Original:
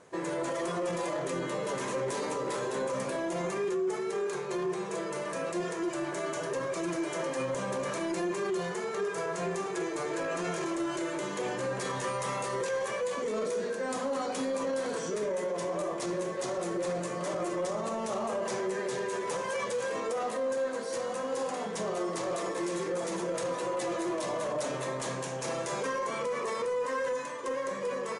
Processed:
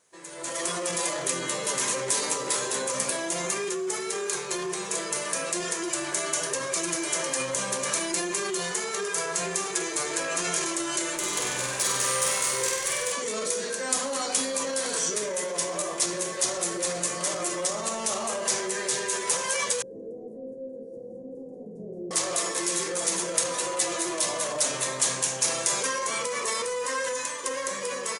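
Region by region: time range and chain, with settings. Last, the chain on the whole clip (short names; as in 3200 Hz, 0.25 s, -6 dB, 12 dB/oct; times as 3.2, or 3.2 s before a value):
11.16–13.12 tube stage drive 28 dB, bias 0.4 + flutter echo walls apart 8.2 m, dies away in 0.97 s
19.82–22.11 inverse Chebyshev low-pass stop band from 1100 Hz, stop band 50 dB + echo 0.173 s -6.5 dB
whole clip: AGC gain up to 16.5 dB; pre-emphasis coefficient 0.9; gain +1.5 dB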